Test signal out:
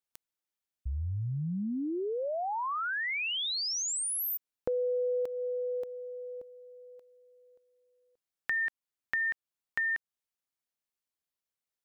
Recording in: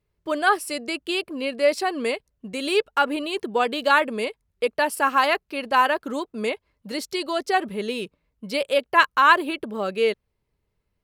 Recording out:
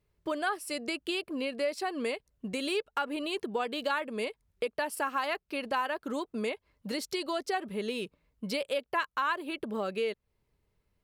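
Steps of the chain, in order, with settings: compression 3:1, threshold -32 dBFS

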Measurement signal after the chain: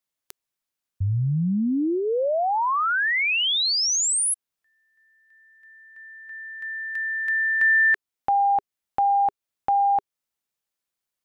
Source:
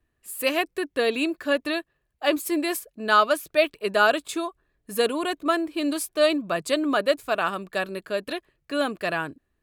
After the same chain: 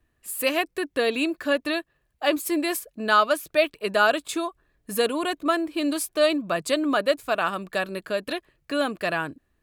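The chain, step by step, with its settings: peaking EQ 400 Hz -3.5 dB 0.2 oct; in parallel at -1 dB: compression, threshold -33 dBFS; on the sum: trim -1.5 dB

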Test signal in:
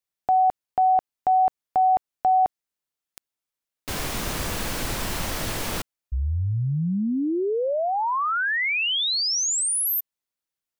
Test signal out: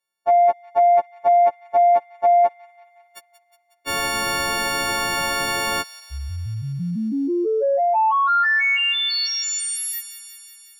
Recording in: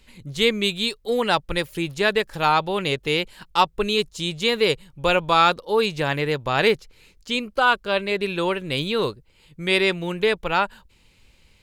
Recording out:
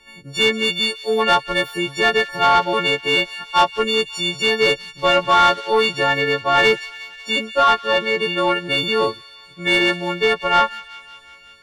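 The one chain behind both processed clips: partials quantised in pitch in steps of 4 st; treble shelf 2.3 kHz -9 dB; overdrive pedal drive 15 dB, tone 2.3 kHz, clips at -4 dBFS; feedback echo behind a high-pass 182 ms, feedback 70%, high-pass 2.1 kHz, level -14 dB

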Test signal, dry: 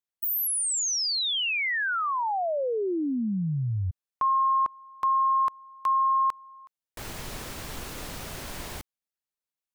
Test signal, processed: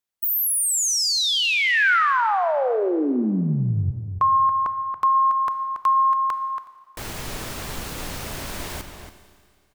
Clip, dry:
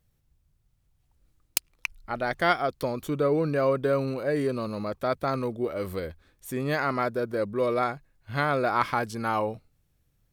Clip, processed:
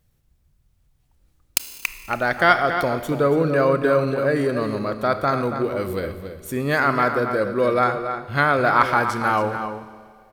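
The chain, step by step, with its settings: echo from a far wall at 48 m, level -8 dB; Schroeder reverb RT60 2.1 s, combs from 25 ms, DRR 11 dB; dynamic bell 1.5 kHz, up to +5 dB, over -43 dBFS, Q 2.1; trim +5 dB

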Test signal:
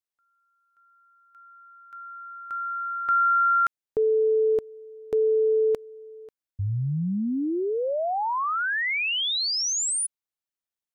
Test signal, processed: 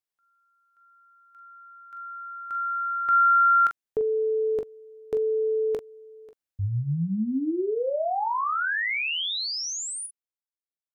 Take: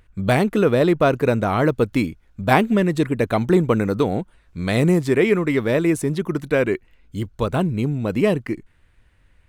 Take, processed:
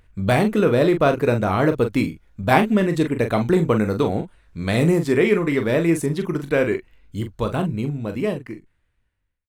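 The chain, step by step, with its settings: fade out at the end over 2.28 s; on a send: early reflections 19 ms -13.5 dB, 42 ms -8 dB; on the sum: trim -1 dB

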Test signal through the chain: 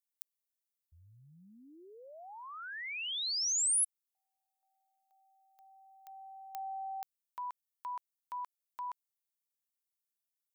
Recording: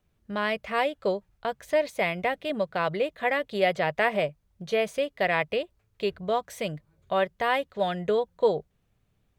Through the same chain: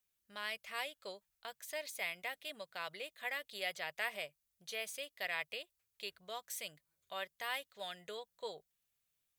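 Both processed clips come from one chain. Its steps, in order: pre-emphasis filter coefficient 0.97

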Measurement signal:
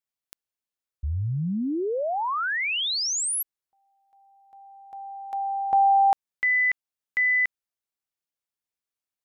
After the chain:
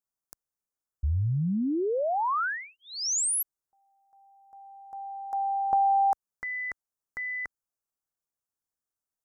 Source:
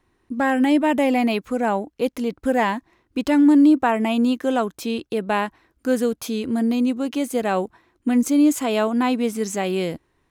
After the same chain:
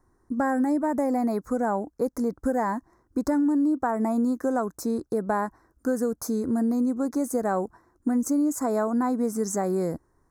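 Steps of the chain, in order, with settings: Chebyshev band-stop 1.4–6 kHz, order 2; bass shelf 70 Hz +6 dB; compression, threshold -21 dBFS

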